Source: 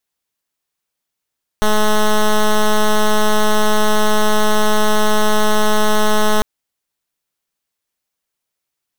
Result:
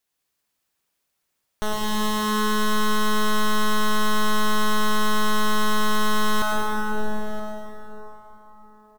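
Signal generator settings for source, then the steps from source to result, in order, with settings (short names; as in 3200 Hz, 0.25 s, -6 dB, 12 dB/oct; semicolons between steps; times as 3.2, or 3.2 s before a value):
pulse 213 Hz, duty 9% -12 dBFS 4.80 s
limiter -22.5 dBFS; echo 0.975 s -19 dB; plate-style reverb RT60 4.6 s, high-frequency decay 0.5×, pre-delay 80 ms, DRR -3 dB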